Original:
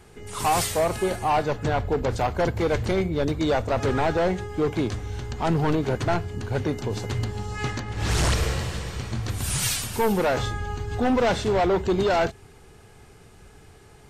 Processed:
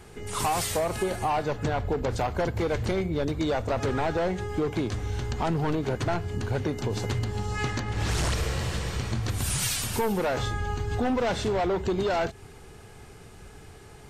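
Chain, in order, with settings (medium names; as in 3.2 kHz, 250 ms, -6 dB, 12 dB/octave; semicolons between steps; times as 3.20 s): compression 5:1, threshold -27 dBFS, peak gain reduction 8 dB; trim +2.5 dB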